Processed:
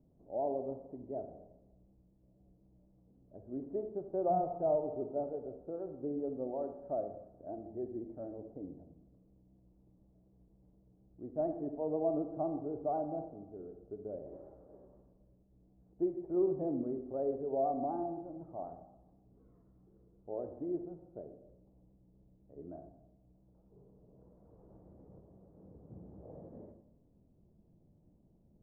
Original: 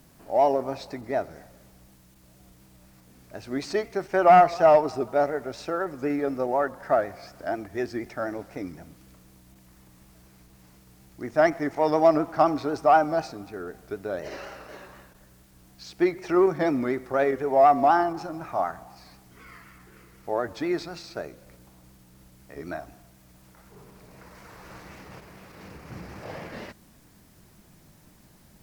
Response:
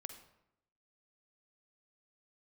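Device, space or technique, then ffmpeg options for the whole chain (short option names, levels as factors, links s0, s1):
next room: -filter_complex "[0:a]lowpass=f=610:w=0.5412,lowpass=f=610:w=1.3066[s0];[1:a]atrim=start_sample=2205[s1];[s0][s1]afir=irnorm=-1:irlink=0,volume=0.501"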